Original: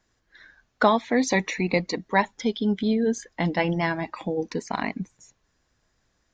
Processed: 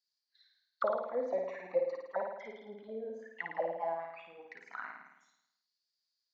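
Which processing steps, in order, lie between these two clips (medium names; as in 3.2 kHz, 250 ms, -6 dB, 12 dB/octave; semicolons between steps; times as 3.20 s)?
auto-wah 540–4600 Hz, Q 13, down, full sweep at -18.5 dBFS; flutter echo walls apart 9.3 m, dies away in 0.85 s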